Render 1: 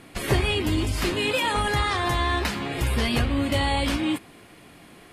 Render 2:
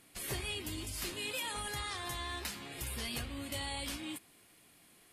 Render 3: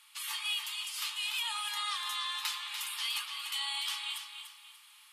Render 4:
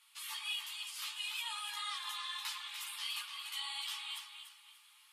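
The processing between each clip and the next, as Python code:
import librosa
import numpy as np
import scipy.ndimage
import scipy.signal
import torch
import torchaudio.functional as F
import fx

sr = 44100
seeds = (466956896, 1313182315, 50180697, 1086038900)

y1 = scipy.signal.lfilter([1.0, -0.8], [1.0], x)
y1 = F.gain(torch.from_numpy(y1), -5.0).numpy()
y2 = fx.rider(y1, sr, range_db=10, speed_s=0.5)
y2 = scipy.signal.sosfilt(scipy.signal.cheby1(6, 9, 840.0, 'highpass', fs=sr, output='sos'), y2)
y2 = fx.echo_feedback(y2, sr, ms=292, feedback_pct=33, wet_db=-8)
y2 = F.gain(torch.from_numpy(y2), 9.0).numpy()
y3 = fx.chorus_voices(y2, sr, voices=6, hz=1.0, base_ms=14, depth_ms=3.2, mix_pct=50)
y3 = F.gain(torch.from_numpy(y3), -2.5).numpy()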